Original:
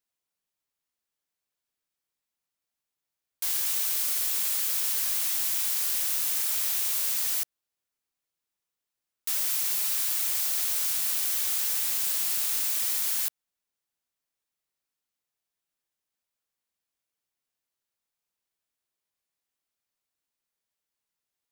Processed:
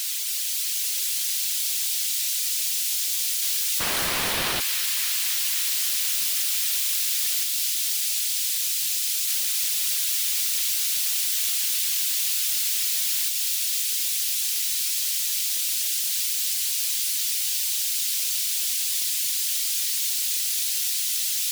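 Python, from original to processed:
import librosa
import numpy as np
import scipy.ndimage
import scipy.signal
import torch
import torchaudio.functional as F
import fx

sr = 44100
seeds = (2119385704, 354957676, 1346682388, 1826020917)

p1 = x + 0.5 * 10.0 ** (-24.0 / 20.0) * np.diff(np.sign(x), prepend=np.sign(x[:1]))
p2 = fx.weighting(p1, sr, curve='D')
p3 = fx.dereverb_blind(p2, sr, rt60_s=0.69)
p4 = fx.low_shelf(p3, sr, hz=61.0, db=-6.0)
p5 = fx.over_compress(p4, sr, threshold_db=-28.0, ratio=-0.5)
p6 = p4 + (p5 * librosa.db_to_amplitude(-1.5))
p7 = fx.sample_hold(p6, sr, seeds[0], rate_hz=7300.0, jitter_pct=0, at=(3.79, 4.59), fade=0.02)
p8 = p7 + fx.echo_wet_highpass(p7, sr, ms=267, feedback_pct=83, hz=2300.0, wet_db=-4.5, dry=0)
y = p8 * librosa.db_to_amplitude(-6.5)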